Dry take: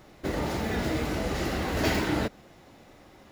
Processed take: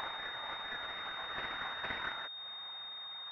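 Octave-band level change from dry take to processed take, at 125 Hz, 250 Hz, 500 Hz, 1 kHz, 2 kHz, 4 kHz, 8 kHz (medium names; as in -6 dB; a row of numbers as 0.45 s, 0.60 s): -28.0 dB, -28.0 dB, -20.0 dB, -7.0 dB, -5.0 dB, -0.5 dB, under -30 dB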